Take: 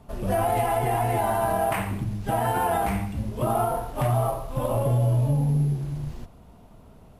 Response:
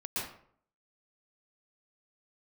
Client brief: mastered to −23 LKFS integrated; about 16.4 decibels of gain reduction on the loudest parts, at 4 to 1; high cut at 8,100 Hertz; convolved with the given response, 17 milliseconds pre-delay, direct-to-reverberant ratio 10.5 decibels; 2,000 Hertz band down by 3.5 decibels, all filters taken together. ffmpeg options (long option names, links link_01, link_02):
-filter_complex "[0:a]lowpass=8100,equalizer=frequency=2000:width_type=o:gain=-4.5,acompressor=threshold=-40dB:ratio=4,asplit=2[link_01][link_02];[1:a]atrim=start_sample=2205,adelay=17[link_03];[link_02][link_03]afir=irnorm=-1:irlink=0,volume=-14.5dB[link_04];[link_01][link_04]amix=inputs=2:normalize=0,volume=17dB"